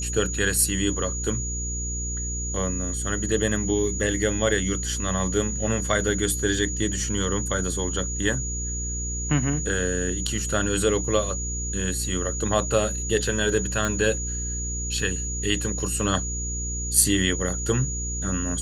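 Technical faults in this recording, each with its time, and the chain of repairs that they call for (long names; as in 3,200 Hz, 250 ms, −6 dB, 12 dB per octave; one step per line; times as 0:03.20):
mains hum 60 Hz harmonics 8 −31 dBFS
whistle 6,800 Hz −30 dBFS
0:13.85: click −12 dBFS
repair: click removal
hum removal 60 Hz, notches 8
notch filter 6,800 Hz, Q 30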